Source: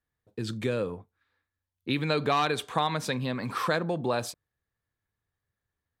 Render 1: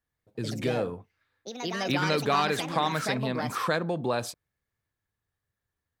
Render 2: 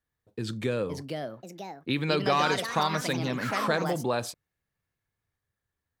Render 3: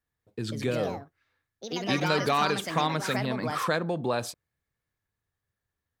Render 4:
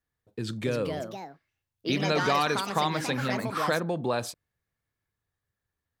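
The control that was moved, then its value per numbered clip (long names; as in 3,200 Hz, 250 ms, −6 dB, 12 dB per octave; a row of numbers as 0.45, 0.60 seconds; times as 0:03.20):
delay with pitch and tempo change per echo, delay time: 139, 596, 220, 362 milliseconds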